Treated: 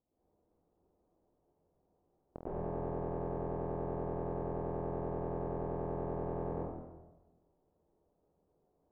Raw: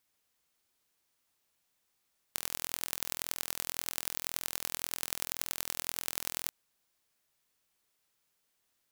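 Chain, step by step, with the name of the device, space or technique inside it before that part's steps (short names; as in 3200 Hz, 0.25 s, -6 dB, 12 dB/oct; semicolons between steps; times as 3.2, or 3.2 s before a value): next room (LPF 690 Hz 24 dB/oct; reverb RT60 1.1 s, pre-delay 0.105 s, DRR -10.5 dB); gain +5.5 dB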